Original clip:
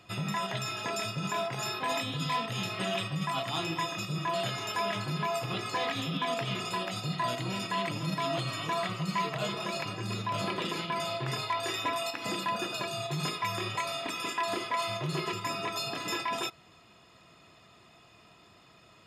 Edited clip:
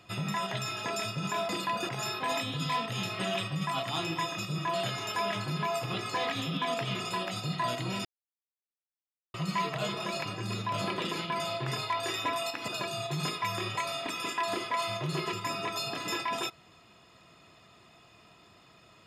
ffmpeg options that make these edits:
-filter_complex "[0:a]asplit=6[a][b][c][d][e][f];[a]atrim=end=1.492[g];[b]atrim=start=12.278:end=12.682[h];[c]atrim=start=1.488:end=7.65,asetpts=PTS-STARTPTS,afade=t=out:st=6.158:d=0.004:c=hsin[i];[d]atrim=start=7.65:end=8.94,asetpts=PTS-STARTPTS,volume=0[j];[e]atrim=start=8.94:end=12.282,asetpts=PTS-STARTPTS,afade=t=in:d=0.004:c=hsin[k];[f]atrim=start=12.678[l];[g][h]acrossfade=d=0.004:c1=hsin:c2=hsin[m];[i][j][k]concat=n=3:v=0:a=1[n];[m][n]acrossfade=d=0.004:c1=hsin:c2=hsin[o];[o][l]acrossfade=d=0.004:c1=hsin:c2=hsin"

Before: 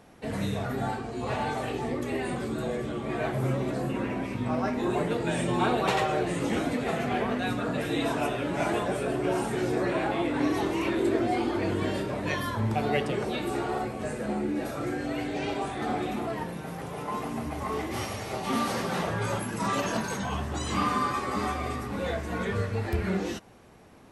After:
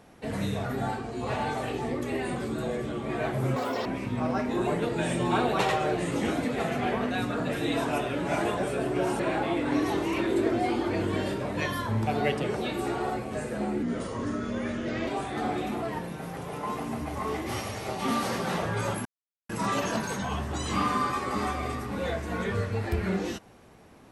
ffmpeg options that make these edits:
-filter_complex "[0:a]asplit=7[a][b][c][d][e][f][g];[a]atrim=end=3.564[h];[b]atrim=start=3.56:end=4.14,asetpts=PTS-STARTPTS,asetrate=86436,aresample=44100[i];[c]atrim=start=4.136:end=9.482[j];[d]atrim=start=9.878:end=14.514[k];[e]atrim=start=14.51:end=15.52,asetpts=PTS-STARTPTS,asetrate=35721,aresample=44100[l];[f]atrim=start=15.516:end=19.5,asetpts=PTS-STARTPTS,afade=t=out:st=3.98:d=0.004:c=hsin,apad=pad_dur=0.44[m];[g]atrim=start=19.5,asetpts=PTS-STARTPTS,afade=t=in:d=0.004:c=hsin[n];[h][i]acrossfade=d=0.004:c1=hsin:c2=hsin[o];[o][j]acrossfade=d=0.004:c1=hsin:c2=hsin[p];[p][k]acrossfade=d=0.004:c1=hsin:c2=hsin[q];[q][l]acrossfade=d=0.004:c1=hsin:c2=hsin[r];[m][n]concat=n=2:v=0:a=1[s];[r][s]acrossfade=d=0.004:c1=hsin:c2=hsin"

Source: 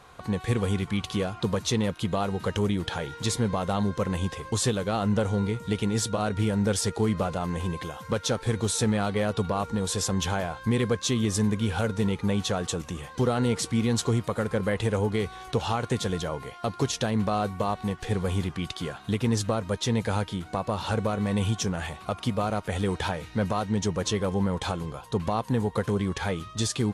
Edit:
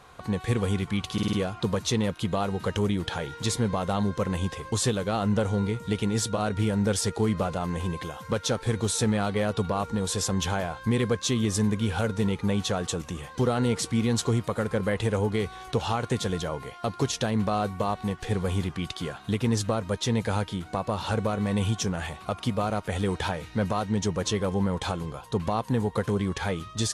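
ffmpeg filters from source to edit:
-filter_complex "[0:a]asplit=5[a][b][c][d][e];[a]atrim=end=1.182[f];[b]atrim=start=1.128:end=1.182[g];[c]atrim=start=1.128:end=1.182[h];[d]atrim=start=1.128:end=1.182[i];[e]atrim=start=1.128[j];[f][g]acrossfade=d=0.004:c1=hsin:c2=hsin[k];[k][h]acrossfade=d=0.004:c1=hsin:c2=hsin[l];[l][i]acrossfade=d=0.004:c1=hsin:c2=hsin[m];[m][j]acrossfade=d=0.004:c1=hsin:c2=hsin"

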